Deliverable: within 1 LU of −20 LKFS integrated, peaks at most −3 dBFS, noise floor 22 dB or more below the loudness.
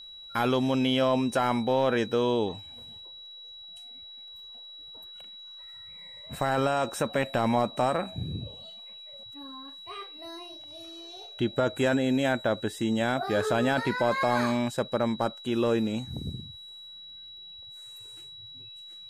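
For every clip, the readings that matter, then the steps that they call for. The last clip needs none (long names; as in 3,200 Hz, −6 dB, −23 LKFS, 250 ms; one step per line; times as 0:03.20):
crackle rate 20 per second; interfering tone 3,900 Hz; level of the tone −43 dBFS; integrated loudness −27.5 LKFS; sample peak −14.0 dBFS; target loudness −20.0 LKFS
→ click removal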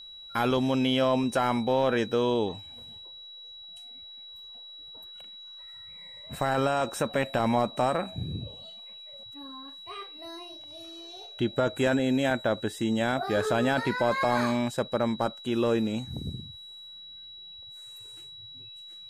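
crackle rate 0 per second; interfering tone 3,900 Hz; level of the tone −43 dBFS
→ notch filter 3,900 Hz, Q 30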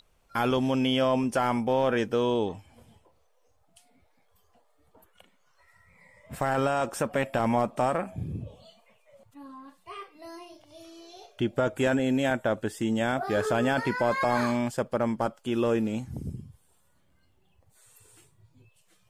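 interfering tone none found; integrated loudness −27.5 LKFS; sample peak −13.5 dBFS; target loudness −20.0 LKFS
→ level +7.5 dB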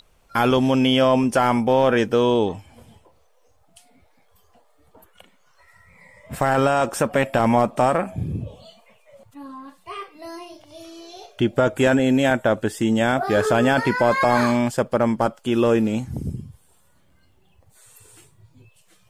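integrated loudness −20.0 LKFS; sample peak −6.0 dBFS; background noise floor −58 dBFS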